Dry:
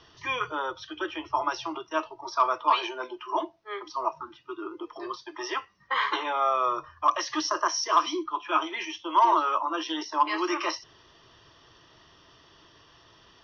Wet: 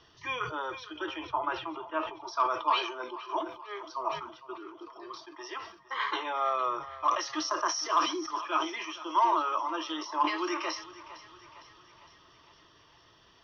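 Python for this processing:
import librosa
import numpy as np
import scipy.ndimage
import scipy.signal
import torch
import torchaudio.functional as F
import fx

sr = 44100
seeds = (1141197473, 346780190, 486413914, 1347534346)

y = fx.lowpass(x, sr, hz=2800.0, slope=24, at=(1.27, 2.24))
y = fx.comb_fb(y, sr, f0_hz=230.0, decay_s=1.3, harmonics='all', damping=0.0, mix_pct=40, at=(4.53, 6.0))
y = fx.echo_thinned(y, sr, ms=458, feedback_pct=61, hz=360.0, wet_db=-16.0)
y = fx.sustainer(y, sr, db_per_s=100.0)
y = F.gain(torch.from_numpy(y), -4.5).numpy()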